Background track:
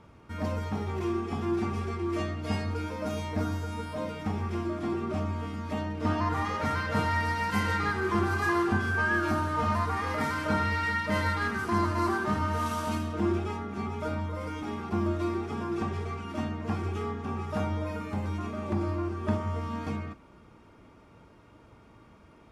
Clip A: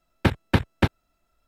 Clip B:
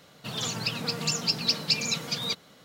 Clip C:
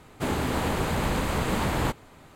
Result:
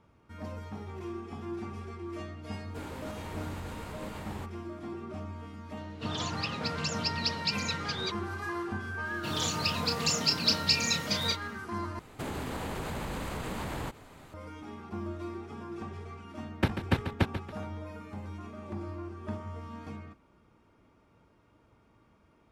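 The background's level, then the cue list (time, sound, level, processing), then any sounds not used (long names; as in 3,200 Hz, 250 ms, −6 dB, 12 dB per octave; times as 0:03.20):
background track −9 dB
0:02.54: mix in C −15.5 dB + brickwall limiter −17 dBFS
0:05.77: mix in B −3 dB + high-frequency loss of the air 89 metres
0:08.99: mix in B −1.5 dB, fades 0.10 s + double-tracking delay 30 ms −6 dB
0:11.99: overwrite with C −1 dB + downward compressor 5 to 1, threshold −32 dBFS
0:16.38: mix in A −7 dB + repeating echo 140 ms, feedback 35%, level −10 dB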